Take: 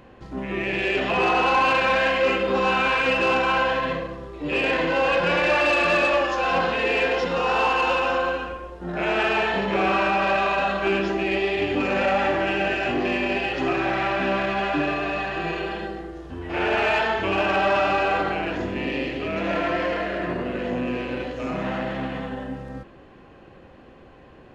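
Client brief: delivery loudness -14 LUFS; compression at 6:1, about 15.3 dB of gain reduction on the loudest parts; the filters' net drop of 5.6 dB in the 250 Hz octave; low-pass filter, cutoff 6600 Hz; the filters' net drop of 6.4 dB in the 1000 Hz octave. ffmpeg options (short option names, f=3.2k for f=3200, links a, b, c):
-af "lowpass=6.6k,equalizer=f=250:t=o:g=-7.5,equalizer=f=1k:t=o:g=-8,acompressor=threshold=-38dB:ratio=6,volume=25dB"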